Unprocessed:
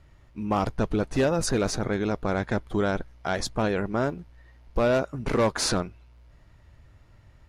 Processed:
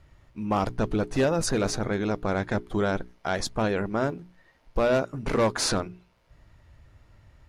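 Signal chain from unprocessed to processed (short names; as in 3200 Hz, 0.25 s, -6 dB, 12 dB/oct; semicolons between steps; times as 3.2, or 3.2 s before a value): notches 60/120/180/240/300/360/420 Hz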